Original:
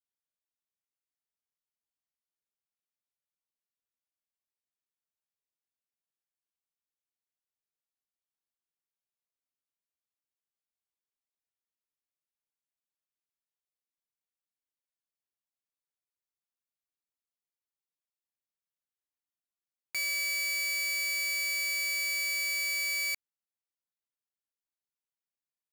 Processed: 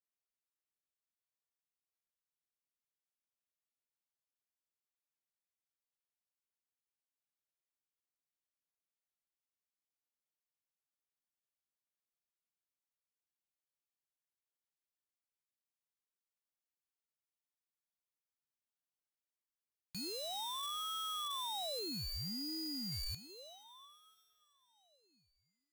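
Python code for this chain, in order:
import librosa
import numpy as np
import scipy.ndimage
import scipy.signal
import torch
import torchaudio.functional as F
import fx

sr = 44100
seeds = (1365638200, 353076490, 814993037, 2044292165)

y = 10.0 ** (-33.5 / 20.0) * np.tanh(x / 10.0 ** (-33.5 / 20.0))
y = fx.peak_eq(y, sr, hz=6100.0, db=-12.0, octaves=0.69, at=(21.79, 22.92))
y = fx.rev_plate(y, sr, seeds[0], rt60_s=4.4, hf_ratio=0.95, predelay_ms=0, drr_db=10.5)
y = fx.ring_lfo(y, sr, carrier_hz=1800.0, swing_pct=45, hz=0.31)
y = y * librosa.db_to_amplitude(-3.5)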